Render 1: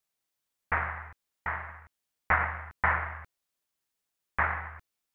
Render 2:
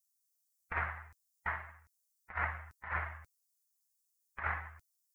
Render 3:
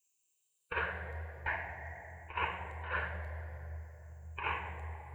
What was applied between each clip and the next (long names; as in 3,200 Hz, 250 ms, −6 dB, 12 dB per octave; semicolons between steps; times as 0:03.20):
spectral dynamics exaggerated over time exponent 1.5; high-shelf EQ 3,200 Hz +8.5 dB; compressor whose output falls as the input rises −31 dBFS, ratio −0.5; level −3.5 dB
rippled gain that drifts along the octave scale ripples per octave 0.7, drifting +0.47 Hz, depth 9 dB; phaser with its sweep stopped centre 530 Hz, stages 4; convolution reverb RT60 3.5 s, pre-delay 3 ms, DRR 8.5 dB; level +4.5 dB